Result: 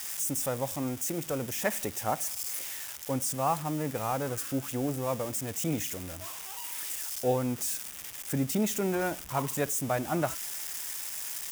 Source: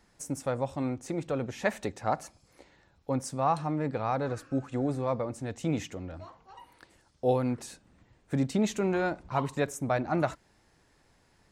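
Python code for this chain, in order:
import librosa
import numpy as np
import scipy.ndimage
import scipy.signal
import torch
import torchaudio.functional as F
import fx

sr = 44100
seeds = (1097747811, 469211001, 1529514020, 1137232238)

y = x + 0.5 * 10.0 ** (-25.0 / 20.0) * np.diff(np.sign(x), prepend=np.sign(x[:1]))
y = fx.peak_eq(y, sr, hz=4200.0, db=-8.5, octaves=0.25)
y = y * librosa.db_to_amplitude(-1.5)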